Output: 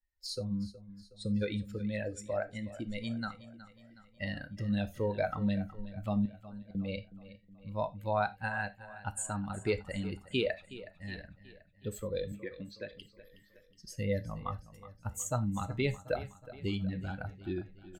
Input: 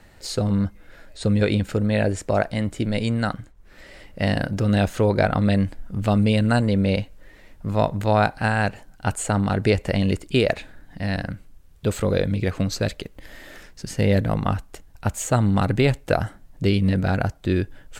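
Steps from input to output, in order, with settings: per-bin expansion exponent 2; low shelf 390 Hz -4 dB; notch 680 Hz, Q 14; in parallel at -3 dB: compressor, threshold -33 dBFS, peak gain reduction 14 dB; 6.25–6.75 on the sum: flipped gate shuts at -19 dBFS, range -33 dB; 12.32–12.93 speaker cabinet 250–3100 Hz, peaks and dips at 360 Hz +5 dB, 650 Hz -4 dB, 1100 Hz -5 dB, 1700 Hz +4 dB; feedback echo 0.368 s, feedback 51%, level -16 dB; non-linear reverb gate 0.11 s falling, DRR 10 dB; gain -8.5 dB

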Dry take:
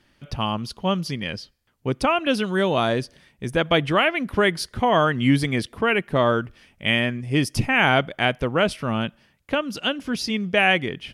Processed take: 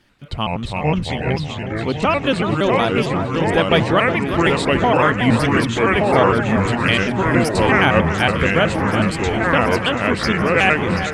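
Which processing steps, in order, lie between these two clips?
trilling pitch shifter -3.5 st, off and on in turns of 93 ms; echoes that change speed 0.257 s, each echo -3 st, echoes 2; echo with dull and thin repeats by turns 0.367 s, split 1800 Hz, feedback 82%, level -8.5 dB; gain +3 dB

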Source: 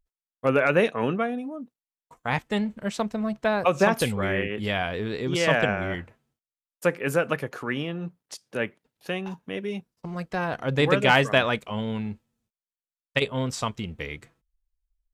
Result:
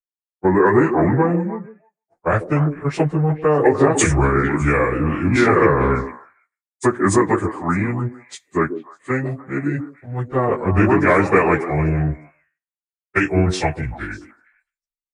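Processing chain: pitch shift by moving bins -6 st; in parallel at +1 dB: limiter -20 dBFS, peak gain reduction 11 dB; on the sum: low shelf 74 Hz -6.5 dB; compressor, threshold -20 dBFS, peak gain reduction 7 dB; band shelf 4000 Hz -10.5 dB 1.3 oct; on a send: delay with a stepping band-pass 0.152 s, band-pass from 340 Hz, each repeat 1.4 oct, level -4 dB; on the sum: three-band expander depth 100%; gain +7.5 dB

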